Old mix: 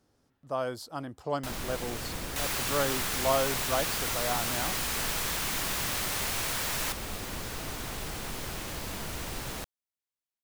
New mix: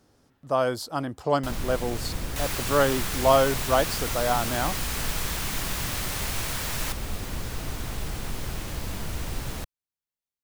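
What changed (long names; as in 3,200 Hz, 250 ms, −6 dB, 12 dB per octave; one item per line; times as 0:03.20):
speech +8.0 dB
first sound: add low-shelf EQ 170 Hz +10 dB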